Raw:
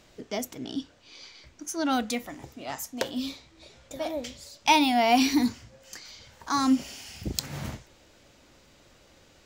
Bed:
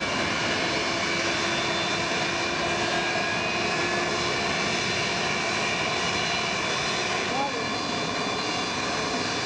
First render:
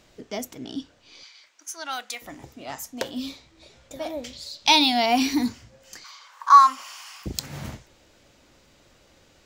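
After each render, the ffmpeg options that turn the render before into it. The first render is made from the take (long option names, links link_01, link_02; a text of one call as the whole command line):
ffmpeg -i in.wav -filter_complex "[0:a]asettb=1/sr,asplit=3[link_01][link_02][link_03];[link_01]atrim=end=1.234[link_04];[link_02]atrim=start=1.23:end=2.22,asetpts=PTS-STARTPTS,afade=type=in:duration=0.004:curve=qsin,afade=type=out:start_time=0.986:duration=0.004:curve=qsin,highpass=970[link_05];[link_03]atrim=start=2.216[link_06];[link_04][link_05]acrossfade=duration=0.004:curve1=hsin:curve2=qsin[link_07];[link_07][link_06]acrossfade=duration=0.004:curve1=qsin:curve2=hsin,asettb=1/sr,asplit=3[link_08][link_09][link_10];[link_08]atrim=end=4.334[link_11];[link_09]atrim=start=4.33:end=5.06,asetpts=PTS-STARTPTS,afade=type=in:duration=0.004:curve=qsin,afade=type=out:start_time=0.726:duration=0.004:curve=qsin,equalizer=frequency=4100:width=2.1:gain=14[link_12];[link_10]atrim=start=5.056[link_13];[link_11][link_12]acrossfade=duration=0.004:curve1=hsin:curve2=qsin[link_14];[link_14][link_13]acrossfade=duration=0.004:curve1=qsin:curve2=hsin,asettb=1/sr,asplit=3[link_15][link_16][link_17];[link_15]atrim=end=6.044[link_18];[link_16]atrim=start=6.04:end=7.26,asetpts=PTS-STARTPTS,afade=type=in:duration=0.004:curve=qsin,afade=type=out:start_time=1.216:duration=0.004:curve=qsin,highpass=frequency=1100:width_type=q:width=8.9[link_19];[link_17]atrim=start=7.256[link_20];[link_18][link_19]acrossfade=duration=0.004:curve1=hsin:curve2=qsin[link_21];[link_21][link_20]acrossfade=duration=0.004:curve1=qsin:curve2=hsin" out.wav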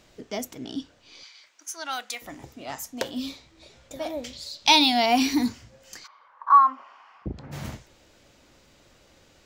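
ffmpeg -i in.wav -filter_complex "[0:a]asplit=3[link_01][link_02][link_03];[link_01]afade=type=out:start_time=6.06:duration=0.02[link_04];[link_02]lowpass=1100,afade=type=in:start_time=6.06:duration=0.02,afade=type=out:start_time=7.51:duration=0.02[link_05];[link_03]afade=type=in:start_time=7.51:duration=0.02[link_06];[link_04][link_05][link_06]amix=inputs=3:normalize=0" out.wav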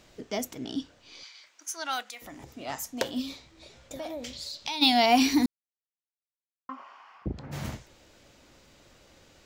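ffmpeg -i in.wav -filter_complex "[0:a]asplit=3[link_01][link_02][link_03];[link_01]afade=type=out:start_time=2.02:duration=0.02[link_04];[link_02]acompressor=threshold=-42dB:ratio=2.5:attack=3.2:release=140:knee=1:detection=peak,afade=type=in:start_time=2.02:duration=0.02,afade=type=out:start_time=2.51:duration=0.02[link_05];[link_03]afade=type=in:start_time=2.51:duration=0.02[link_06];[link_04][link_05][link_06]amix=inputs=3:normalize=0,asplit=3[link_07][link_08][link_09];[link_07]afade=type=out:start_time=3.21:duration=0.02[link_10];[link_08]acompressor=threshold=-33dB:ratio=4:attack=3.2:release=140:knee=1:detection=peak,afade=type=in:start_time=3.21:duration=0.02,afade=type=out:start_time=4.81:duration=0.02[link_11];[link_09]afade=type=in:start_time=4.81:duration=0.02[link_12];[link_10][link_11][link_12]amix=inputs=3:normalize=0,asplit=3[link_13][link_14][link_15];[link_13]atrim=end=5.46,asetpts=PTS-STARTPTS,afade=type=out:start_time=5.456:duration=0.004:curve=hsin[link_16];[link_14]atrim=start=5.46:end=6.69,asetpts=PTS-STARTPTS,volume=0[link_17];[link_15]atrim=start=6.69,asetpts=PTS-STARTPTS,afade=type=in:duration=0.004:curve=hsin[link_18];[link_16][link_17][link_18]concat=n=3:v=0:a=1" out.wav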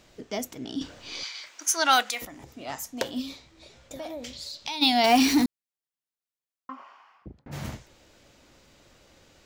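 ffmpeg -i in.wav -filter_complex "[0:a]asettb=1/sr,asplit=3[link_01][link_02][link_03];[link_01]atrim=end=5.044[link_04];[link_02]atrim=start=5.04:end=5.44,asetpts=PTS-STARTPTS,afade=type=in:duration=0.004:curve=qsin,afade=type=out:start_time=0.396:duration=0.004:curve=qsin,aeval=exprs='val(0)+0.5*0.0531*sgn(val(0))':channel_layout=same[link_05];[link_03]atrim=start=5.436[link_06];[link_04][link_05]acrossfade=duration=0.004:curve1=hsin:curve2=qsin[link_07];[link_07][link_06]acrossfade=duration=0.004:curve1=qsin:curve2=hsin,asplit=4[link_08][link_09][link_10][link_11];[link_08]atrim=end=0.812[link_12];[link_09]atrim=start=0.808:end=2.252,asetpts=PTS-STARTPTS,volume=11.5dB[link_13];[link_10]atrim=start=2.248:end=7.46,asetpts=PTS-STARTPTS,afade=type=out:start_time=4.582:duration=0.63[link_14];[link_11]atrim=start=7.46,asetpts=PTS-STARTPTS,afade=type=in:duration=0.004:curve=hsin[link_15];[link_12][link_13]acrossfade=duration=0.004:curve1=hsin:curve2=hsin[link_16];[link_14][link_15]concat=n=2:v=0:a=1[link_17];[link_16][link_17]acrossfade=duration=0.004:curve1=hsin:curve2=hsin" out.wav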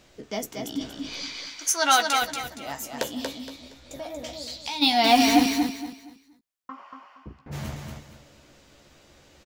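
ffmpeg -i in.wav -filter_complex "[0:a]asplit=2[link_01][link_02];[link_02]adelay=14,volume=-7dB[link_03];[link_01][link_03]amix=inputs=2:normalize=0,aecho=1:1:234|468|702|936:0.596|0.167|0.0467|0.0131" out.wav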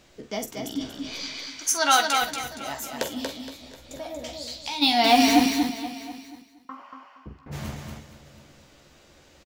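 ffmpeg -i in.wav -filter_complex "[0:a]asplit=2[link_01][link_02];[link_02]adelay=46,volume=-10.5dB[link_03];[link_01][link_03]amix=inputs=2:normalize=0,aecho=1:1:724:0.1" out.wav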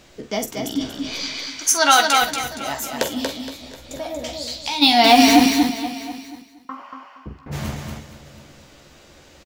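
ffmpeg -i in.wav -af "volume=6.5dB,alimiter=limit=-2dB:level=0:latency=1" out.wav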